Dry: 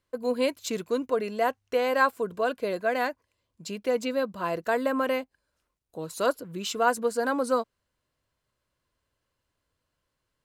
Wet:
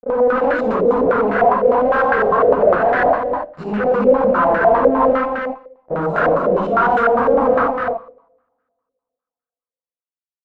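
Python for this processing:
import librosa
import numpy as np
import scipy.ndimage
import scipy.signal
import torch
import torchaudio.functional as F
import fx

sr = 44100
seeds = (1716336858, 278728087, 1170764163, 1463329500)

y = fx.phase_scramble(x, sr, seeds[0], window_ms=200)
y = fx.low_shelf(y, sr, hz=230.0, db=2.5)
y = fx.fuzz(y, sr, gain_db=40.0, gate_db=-45.0)
y = y + 10.0 ** (-4.5 / 20.0) * np.pad(y, (int(262 * sr / 1000.0), 0))[:len(y)]
y = fx.rev_double_slope(y, sr, seeds[1], early_s=0.74, late_s=2.2, knee_db=-26, drr_db=13.5)
y = fx.filter_held_lowpass(y, sr, hz=9.9, low_hz=540.0, high_hz=1500.0)
y = y * librosa.db_to_amplitude(-6.0)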